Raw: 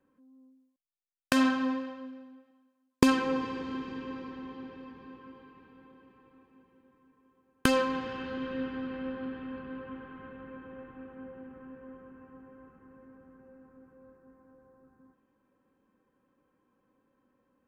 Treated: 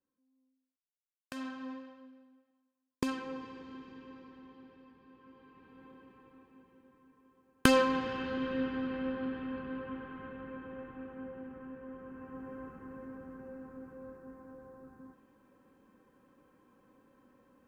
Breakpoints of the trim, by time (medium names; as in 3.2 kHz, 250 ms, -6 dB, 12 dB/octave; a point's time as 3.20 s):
1.33 s -18 dB
1.73 s -11.5 dB
5.05 s -11.5 dB
5.87 s +1 dB
11.89 s +1 dB
12.52 s +8 dB